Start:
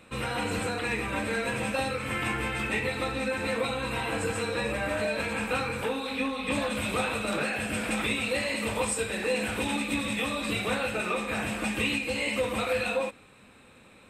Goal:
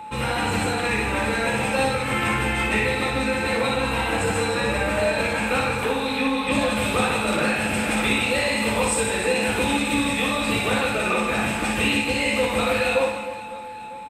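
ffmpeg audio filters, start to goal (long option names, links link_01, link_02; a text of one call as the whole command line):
ffmpeg -i in.wav -af "aecho=1:1:60|156|309.6|555.4|948.6:0.631|0.398|0.251|0.158|0.1,aeval=exprs='val(0)+0.0112*sin(2*PI*860*n/s)':channel_layout=same,volume=5dB" out.wav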